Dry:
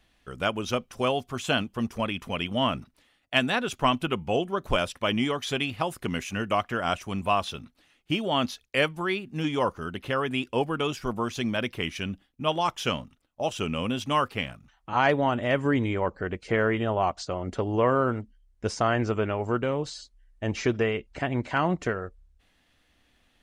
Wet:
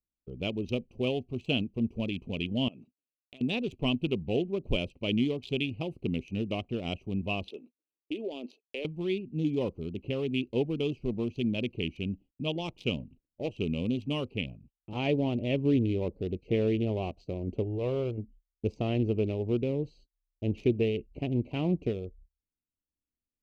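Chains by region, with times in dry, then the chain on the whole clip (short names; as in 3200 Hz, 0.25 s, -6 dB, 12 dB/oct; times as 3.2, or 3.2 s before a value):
2.68–3.41 HPF 170 Hz + tilt +2 dB/oct + compressor, threshold -37 dBFS
7.49–8.85 HPF 350 Hz 24 dB/oct + low shelf 480 Hz +7.5 dB + compressor 5:1, threshold -27 dBFS
12.99–13.58 upward compressor, threshold -44 dBFS + Doppler distortion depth 0.26 ms
17.63–18.18 bell 240 Hz -11.5 dB 0.74 oct + transient shaper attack -8 dB, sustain -3 dB
whole clip: Wiener smoothing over 25 samples; gate -52 dBFS, range -28 dB; EQ curve 410 Hz 0 dB, 1600 Hz -29 dB, 2500 Hz 0 dB, 8700 Hz -13 dB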